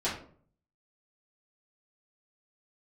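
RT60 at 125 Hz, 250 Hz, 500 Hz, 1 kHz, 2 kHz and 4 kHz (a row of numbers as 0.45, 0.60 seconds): 0.80, 0.60, 0.60, 0.45, 0.35, 0.30 seconds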